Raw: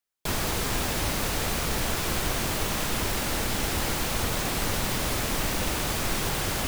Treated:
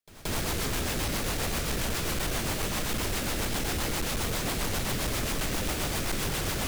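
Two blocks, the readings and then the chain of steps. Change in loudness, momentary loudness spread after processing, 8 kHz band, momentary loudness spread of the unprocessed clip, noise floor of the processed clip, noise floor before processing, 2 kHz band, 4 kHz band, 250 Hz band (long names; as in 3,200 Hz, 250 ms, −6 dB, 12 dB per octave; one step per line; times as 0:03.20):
−2.5 dB, 0 LU, −2.5 dB, 0 LU, −32 dBFS, −29 dBFS, −3.0 dB, −2.5 dB, −1.5 dB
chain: rotating-speaker cabinet horn 7.5 Hz
echo ahead of the sound 177 ms −21 dB
gain into a clipping stage and back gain 27 dB
level +1.5 dB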